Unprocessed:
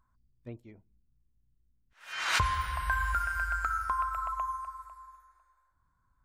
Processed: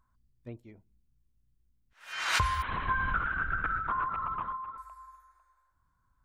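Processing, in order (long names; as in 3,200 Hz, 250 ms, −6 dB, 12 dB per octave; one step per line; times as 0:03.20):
0:02.62–0:04.78: linear-prediction vocoder at 8 kHz whisper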